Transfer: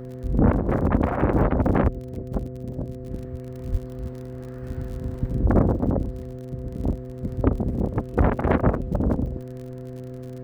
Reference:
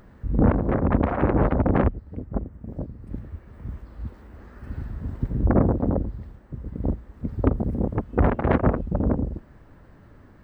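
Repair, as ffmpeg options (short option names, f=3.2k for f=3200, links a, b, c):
-filter_complex "[0:a]adeclick=t=4,bandreject=f=127.1:t=h:w=4,bandreject=f=254.2:t=h:w=4,bandreject=f=381.3:t=h:w=4,bandreject=f=508.4:t=h:w=4,bandreject=f=680:w=30,asplit=3[a][b][c];[a]afade=t=out:st=3.71:d=0.02[d];[b]highpass=f=140:w=0.5412,highpass=f=140:w=1.3066,afade=t=in:st=3.71:d=0.02,afade=t=out:st=3.83:d=0.02[e];[c]afade=t=in:st=3.83:d=0.02[f];[d][e][f]amix=inputs=3:normalize=0,asplit=3[g][h][i];[g]afade=t=out:st=5.52:d=0.02[j];[h]highpass=f=140:w=0.5412,highpass=f=140:w=1.3066,afade=t=in:st=5.52:d=0.02,afade=t=out:st=5.64:d=0.02[k];[i]afade=t=in:st=5.64:d=0.02[l];[j][k][l]amix=inputs=3:normalize=0"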